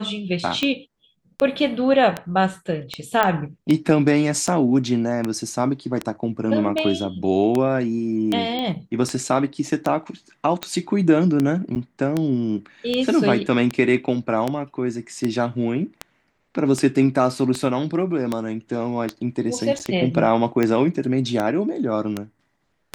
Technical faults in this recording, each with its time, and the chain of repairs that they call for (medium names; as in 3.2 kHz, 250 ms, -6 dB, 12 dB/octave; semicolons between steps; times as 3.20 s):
tick 78 rpm -9 dBFS
3.23 s: pop -6 dBFS
8.59 s: pop -15 dBFS
11.75–11.76 s: dropout 9.2 ms
19.79–19.80 s: dropout 8.4 ms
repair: de-click; interpolate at 11.75 s, 9.2 ms; interpolate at 19.79 s, 8.4 ms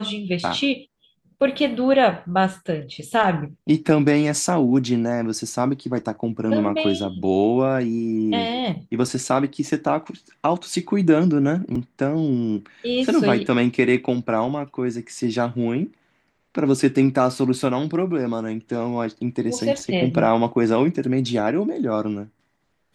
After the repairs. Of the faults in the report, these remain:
nothing left